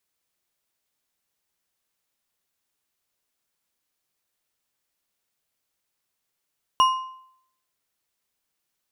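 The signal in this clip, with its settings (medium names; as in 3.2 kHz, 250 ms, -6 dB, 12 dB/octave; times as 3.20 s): metal hit bar, lowest mode 1.04 kHz, decay 0.68 s, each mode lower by 9 dB, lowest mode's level -12 dB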